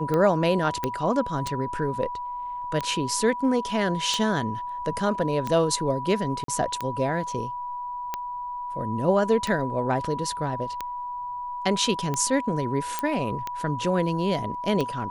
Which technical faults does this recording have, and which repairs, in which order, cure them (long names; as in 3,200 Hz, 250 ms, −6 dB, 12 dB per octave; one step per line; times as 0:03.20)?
scratch tick 45 rpm −14 dBFS
whistle 980 Hz −30 dBFS
0:00.84: click −12 dBFS
0:06.44–0:06.48: drop-out 43 ms
0:12.99: click −11 dBFS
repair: click removal
notch filter 980 Hz, Q 30
repair the gap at 0:06.44, 43 ms